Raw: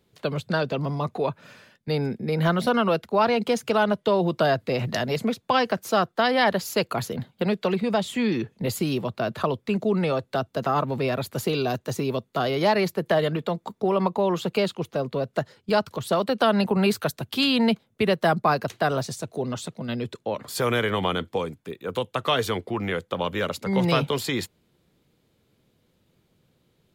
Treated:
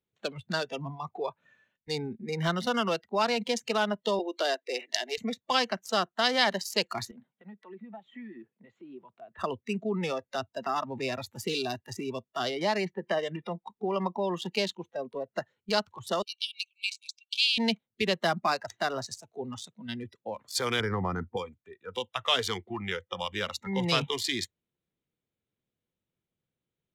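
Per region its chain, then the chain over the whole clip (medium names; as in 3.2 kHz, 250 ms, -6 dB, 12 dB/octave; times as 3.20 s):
4.19–5.18 s: steep high-pass 270 Hz 48 dB/octave + peaking EQ 1.1 kHz -4 dB 0.89 oct
7.11–9.39 s: compression 3:1, threshold -33 dBFS + band-pass 180–2600 Hz
12.50–13.64 s: distance through air 180 m + tape noise reduction on one side only encoder only
16.22–17.58 s: brick-wall FIR band-pass 2.2–8.2 kHz + dynamic bell 4.5 kHz, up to -4 dB, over -36 dBFS, Q 1.4
20.80–21.37 s: low-pass 1.8 kHz 24 dB/octave + bass shelf 150 Hz +11 dB
whole clip: local Wiener filter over 9 samples; spectral noise reduction 16 dB; peaking EQ 5.2 kHz +13.5 dB 2.1 oct; trim -7.5 dB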